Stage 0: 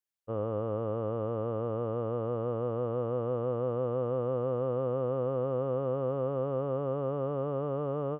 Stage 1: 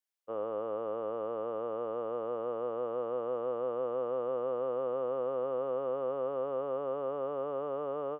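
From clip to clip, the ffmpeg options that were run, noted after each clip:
ffmpeg -i in.wav -af "highpass=420" out.wav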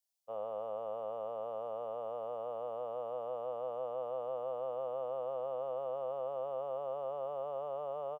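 ffmpeg -i in.wav -af "firequalizer=gain_entry='entry(200,0);entry(290,-15);entry(650,10);entry(1500,-7);entry(2600,3);entry(4700,11)':delay=0.05:min_phase=1,volume=-6.5dB" out.wav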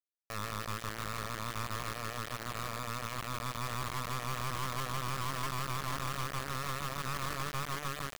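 ffmpeg -i in.wav -af "aecho=1:1:89|328|429:0.224|0.335|0.112,aeval=exprs='abs(val(0))':channel_layout=same,acrusher=bits=3:dc=4:mix=0:aa=0.000001" out.wav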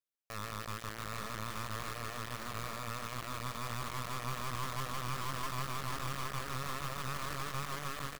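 ffmpeg -i in.wav -af "aecho=1:1:820:0.447,volume=-3dB" out.wav

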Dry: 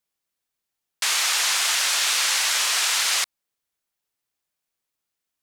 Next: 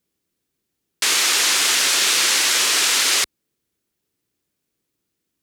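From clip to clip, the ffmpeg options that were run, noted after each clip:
ffmpeg -i in.wav -af "highpass=49,lowshelf=frequency=510:width_type=q:width=1.5:gain=11,volume=4.5dB" out.wav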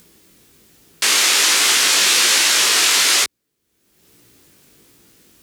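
ffmpeg -i in.wav -af "acompressor=mode=upward:threshold=-35dB:ratio=2.5,flanger=delay=17:depth=4.4:speed=1.2,volume=6dB" out.wav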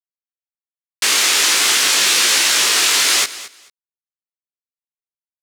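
ffmpeg -i in.wav -af "acrusher=bits=4:mix=0:aa=0.5,aecho=1:1:220|440:0.15|0.0269" out.wav

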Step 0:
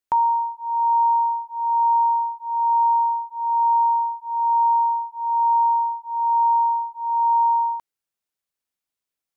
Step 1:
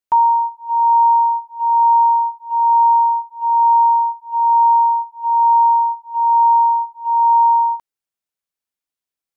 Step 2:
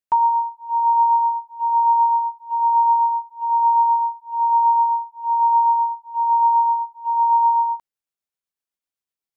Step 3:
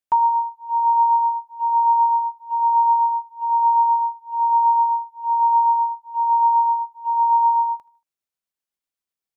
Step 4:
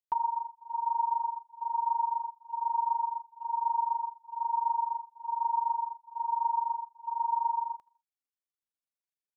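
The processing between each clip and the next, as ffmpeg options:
ffmpeg -i in.wav -af "agate=range=-8dB:threshold=-26dB:ratio=16:detection=peak,volume=6dB" out.wav
ffmpeg -i in.wav -af "tremolo=f=7.9:d=0.33,volume=-2.5dB" out.wav
ffmpeg -i in.wav -af "aecho=1:1:77|154|231:0.0794|0.0342|0.0147" out.wav
ffmpeg -i in.wav -af "tremolo=f=24:d=0.889,volume=-9dB" out.wav

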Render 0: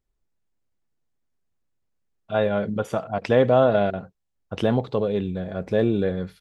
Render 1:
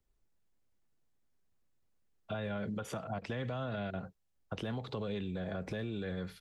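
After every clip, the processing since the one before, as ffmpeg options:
ffmpeg -i in.wav -filter_complex "[0:a]acrossover=split=210|1200[link_01][link_02][link_03];[link_02]acompressor=threshold=-27dB:ratio=6[link_04];[link_01][link_04][link_03]amix=inputs=3:normalize=0,alimiter=limit=-23.5dB:level=0:latency=1:release=114,acrossover=split=340|780[link_05][link_06][link_07];[link_05]acompressor=threshold=-38dB:ratio=4[link_08];[link_06]acompressor=threshold=-45dB:ratio=4[link_09];[link_07]acompressor=threshold=-43dB:ratio=4[link_10];[link_08][link_09][link_10]amix=inputs=3:normalize=0" out.wav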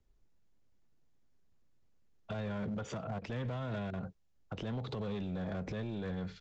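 ffmpeg -i in.wav -af "lowshelf=frequency=480:gain=6,alimiter=level_in=5.5dB:limit=-24dB:level=0:latency=1:release=143,volume=-5.5dB,aresample=16000,volume=34.5dB,asoftclip=hard,volume=-34.5dB,aresample=44100,volume=1dB" out.wav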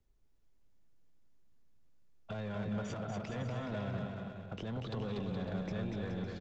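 ffmpeg -i in.wav -af "aecho=1:1:240|420|555|656.2|732.2:0.631|0.398|0.251|0.158|0.1,volume=-2dB" out.wav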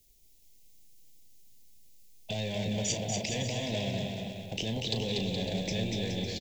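ffmpeg -i in.wav -filter_complex "[0:a]asuperstop=centerf=1300:order=4:qfactor=0.94,asplit=2[link_01][link_02];[link_02]adelay=36,volume=-10.5dB[link_03];[link_01][link_03]amix=inputs=2:normalize=0,crystalizer=i=9:c=0,volume=4.5dB" out.wav

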